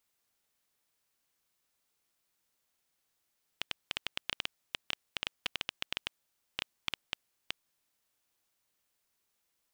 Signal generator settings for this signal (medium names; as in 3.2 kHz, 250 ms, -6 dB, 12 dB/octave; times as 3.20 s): random clicks 7.7 per s -14 dBFS 4.22 s